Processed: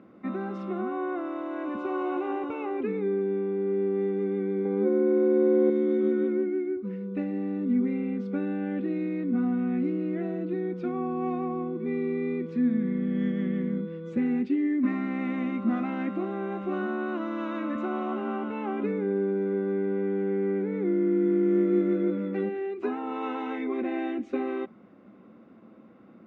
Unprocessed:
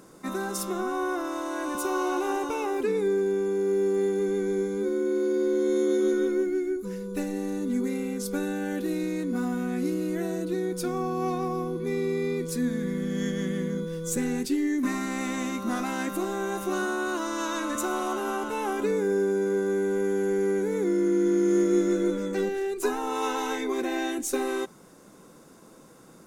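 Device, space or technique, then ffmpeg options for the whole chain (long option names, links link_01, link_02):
bass cabinet: -filter_complex "[0:a]highpass=frequency=81:width=0.5412,highpass=frequency=81:width=1.3066,equalizer=frequency=150:width_type=q:width=4:gain=-10,equalizer=frequency=220:width_type=q:width=4:gain=8,equalizer=frequency=450:width_type=q:width=4:gain=-6,equalizer=frequency=940:width_type=q:width=4:gain=-9,equalizer=frequency=1600:width_type=q:width=4:gain=-8,lowpass=frequency=2400:width=0.5412,lowpass=frequency=2400:width=1.3066,asettb=1/sr,asplit=3[link_01][link_02][link_03];[link_01]atrim=end=4.654[link_04];[link_02]atrim=start=4.65:end=5.7,asetpts=PTS-STARTPTS,afade=type=in:duration=0.004:curve=qsin,afade=type=out:start_time=1.046:duration=0.004:curve=qsin,equalizer=frequency=730:width_type=o:width=1.6:gain=11[link_05];[link_03]atrim=start=5.696[link_06];[link_04][link_05]acrossfade=duration=0.004:curve1=hsin:curve2=qsin[link_07];[link_07][link_06]acrossfade=duration=0.004:curve1=qsin:curve2=hsin"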